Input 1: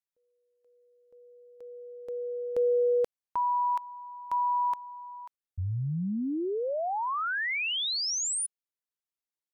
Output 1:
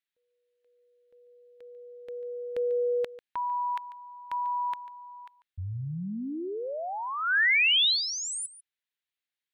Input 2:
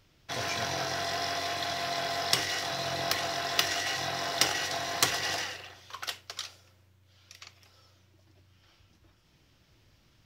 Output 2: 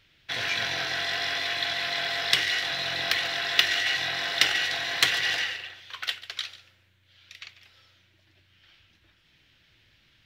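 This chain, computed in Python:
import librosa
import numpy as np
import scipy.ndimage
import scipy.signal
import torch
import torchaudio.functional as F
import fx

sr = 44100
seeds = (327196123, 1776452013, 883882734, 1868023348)

p1 = fx.band_shelf(x, sr, hz=2500.0, db=11.5, octaves=1.7)
p2 = p1 + fx.echo_single(p1, sr, ms=144, db=-16.5, dry=0)
y = p2 * 10.0 ** (-3.5 / 20.0)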